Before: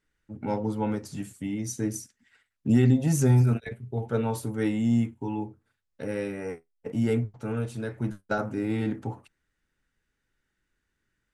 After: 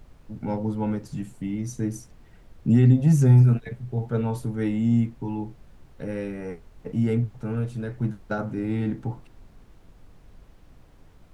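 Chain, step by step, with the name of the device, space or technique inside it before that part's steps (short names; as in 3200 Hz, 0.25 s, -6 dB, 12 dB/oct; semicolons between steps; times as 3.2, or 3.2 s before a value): car interior (bell 150 Hz +9 dB 0.97 oct; high shelf 4400 Hz -6 dB; brown noise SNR 23 dB); gain -1.5 dB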